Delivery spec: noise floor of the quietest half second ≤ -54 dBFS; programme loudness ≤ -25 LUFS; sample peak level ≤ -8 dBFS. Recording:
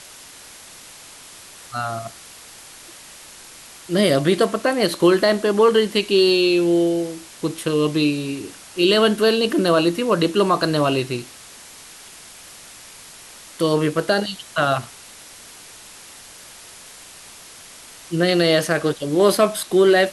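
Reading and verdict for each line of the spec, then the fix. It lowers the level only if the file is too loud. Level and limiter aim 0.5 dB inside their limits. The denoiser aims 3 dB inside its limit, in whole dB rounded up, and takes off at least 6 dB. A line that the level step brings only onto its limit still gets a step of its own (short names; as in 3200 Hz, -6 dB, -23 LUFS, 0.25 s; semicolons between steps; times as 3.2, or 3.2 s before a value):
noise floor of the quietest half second -42 dBFS: fail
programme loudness -19.0 LUFS: fail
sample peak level -5.5 dBFS: fail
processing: denoiser 9 dB, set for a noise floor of -42 dBFS; gain -6.5 dB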